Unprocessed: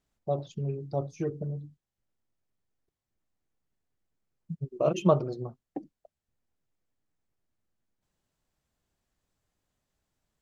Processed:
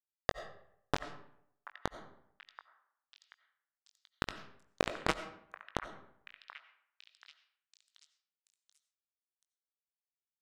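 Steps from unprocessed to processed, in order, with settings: local Wiener filter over 9 samples; wind noise 120 Hz -35 dBFS; bass shelf 100 Hz -11.5 dB; band-stop 360 Hz, Q 12; de-hum 83.96 Hz, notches 13; compression 5:1, threshold -38 dBFS, peak gain reduction 18.5 dB; bit crusher 5-bit; distance through air 83 m; doubling 20 ms -12.5 dB; repeats whose band climbs or falls 732 ms, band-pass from 1.4 kHz, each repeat 0.7 oct, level -11 dB; on a send at -11.5 dB: reverberation RT60 0.70 s, pre-delay 50 ms; on the sum: trim +11 dB

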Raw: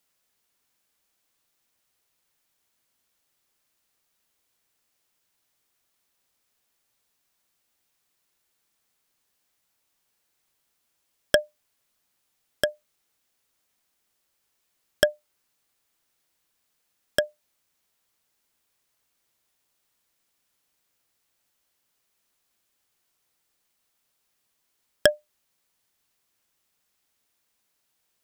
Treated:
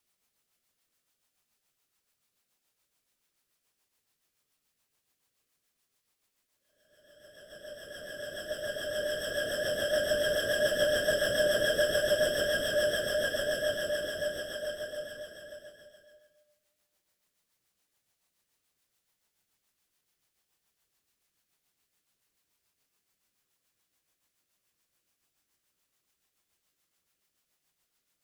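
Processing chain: Paulstretch 9.8×, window 1.00 s, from 23.88 s; rotary cabinet horn 7 Hz

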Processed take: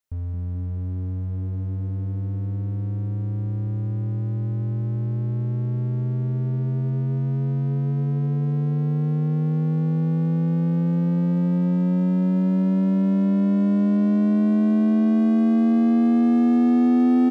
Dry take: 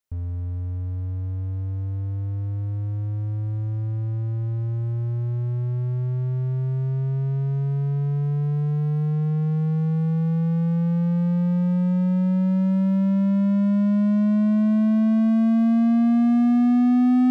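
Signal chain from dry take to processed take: frequency-shifting echo 213 ms, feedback 43%, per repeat +93 Hz, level -12.5 dB

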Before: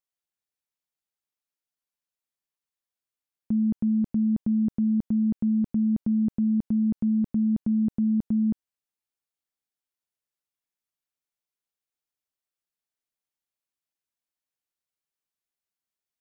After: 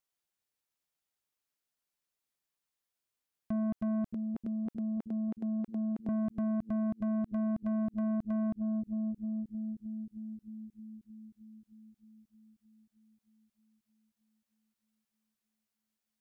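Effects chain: 4.08–6.09 s: high-pass 420 Hz 12 dB/octave; bucket-brigade echo 310 ms, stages 1024, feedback 73%, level -18 dB; compression 6:1, threshold -25 dBFS, peak gain reduction 6.5 dB; saturation -32 dBFS, distortion -9 dB; trim +2.5 dB

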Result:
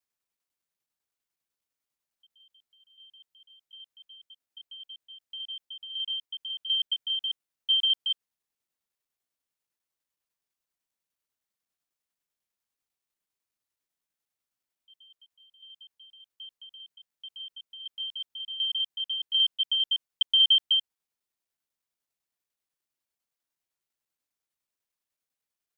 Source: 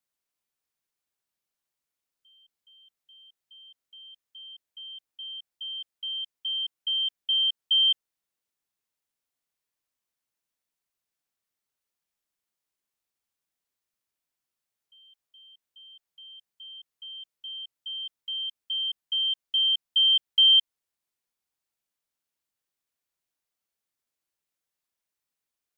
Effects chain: slices played last to first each 124 ms, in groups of 6; tremolo saw down 10 Hz, depth 45%

